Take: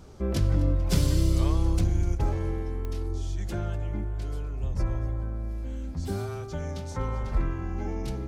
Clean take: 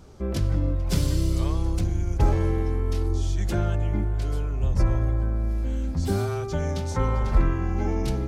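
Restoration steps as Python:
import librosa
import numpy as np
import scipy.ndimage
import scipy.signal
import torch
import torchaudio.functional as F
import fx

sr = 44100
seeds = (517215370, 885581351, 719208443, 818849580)

y = fx.fix_declick_ar(x, sr, threshold=10.0)
y = fx.fix_echo_inverse(y, sr, delay_ms=248, level_db=-18.0)
y = fx.gain(y, sr, db=fx.steps((0.0, 0.0), (2.15, 6.5)))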